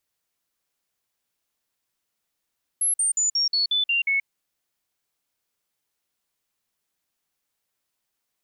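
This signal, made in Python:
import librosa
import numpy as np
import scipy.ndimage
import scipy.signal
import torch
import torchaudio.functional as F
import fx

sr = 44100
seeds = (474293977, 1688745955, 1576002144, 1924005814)

y = fx.stepped_sweep(sr, from_hz=11100.0, direction='down', per_octave=3, tones=8, dwell_s=0.13, gap_s=0.05, level_db=-19.0)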